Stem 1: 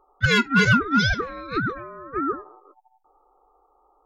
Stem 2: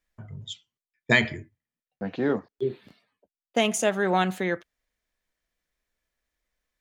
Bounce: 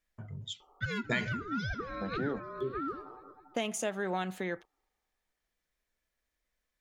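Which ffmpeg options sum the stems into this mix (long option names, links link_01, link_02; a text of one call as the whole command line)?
ffmpeg -i stem1.wav -i stem2.wav -filter_complex "[0:a]acrossover=split=240|1800[link_01][link_02][link_03];[link_01]acompressor=threshold=-28dB:ratio=4[link_04];[link_02]acompressor=threshold=-31dB:ratio=4[link_05];[link_03]acompressor=threshold=-39dB:ratio=4[link_06];[link_04][link_05][link_06]amix=inputs=3:normalize=0,adelay=600,volume=-2dB,asplit=2[link_07][link_08];[link_08]volume=-22.5dB[link_09];[1:a]volume=-2.5dB[link_10];[link_09]aecho=0:1:211|422|633|844|1055|1266|1477|1688|1899:1|0.58|0.336|0.195|0.113|0.0656|0.0381|0.0221|0.0128[link_11];[link_07][link_10][link_11]amix=inputs=3:normalize=0,acompressor=threshold=-36dB:ratio=2" out.wav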